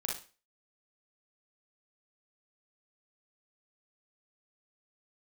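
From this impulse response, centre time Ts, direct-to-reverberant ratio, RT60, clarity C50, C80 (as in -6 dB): 35 ms, -2.0 dB, 0.35 s, 3.0 dB, 12.5 dB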